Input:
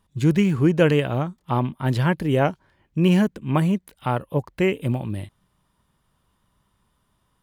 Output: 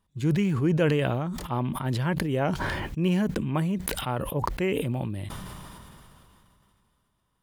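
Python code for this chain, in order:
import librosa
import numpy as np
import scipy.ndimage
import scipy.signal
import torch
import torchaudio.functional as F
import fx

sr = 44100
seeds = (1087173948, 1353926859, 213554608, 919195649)

y = fx.sustainer(x, sr, db_per_s=21.0)
y = y * 10.0 ** (-7.0 / 20.0)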